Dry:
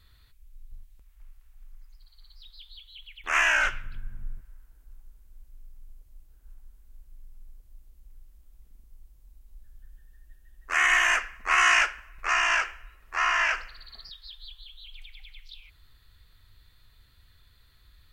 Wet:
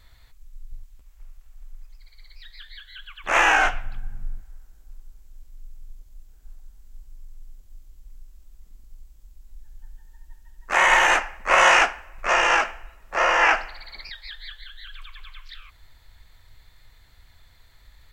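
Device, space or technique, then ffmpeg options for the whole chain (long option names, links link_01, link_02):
octave pedal: -filter_complex "[0:a]asettb=1/sr,asplit=3[link_01][link_02][link_03];[link_01]atrim=end=13.424[link_04];[link_02]atrim=start=13.42:end=14.57,asetpts=PTS-STARTPTS,afade=type=in:duration=0.004:curve=qsin,afade=type=out:start_time=1.146:duration=0.004:curve=qsin,equalizer=frequency=1800:width=0.79:gain=3.5[link_05];[link_03]atrim=start=14.566[link_06];[link_04][link_05]acrossfade=duration=0.004:curve1=hsin:curve2=qsin[link_07];[link_07][link_06]acrossfade=duration=0.004:curve1=qsin:curve2=hsin,asplit=2[link_08][link_09];[link_09]asetrate=22050,aresample=44100,atempo=2,volume=-2dB[link_10];[link_08][link_10]amix=inputs=2:normalize=0,volume=3dB"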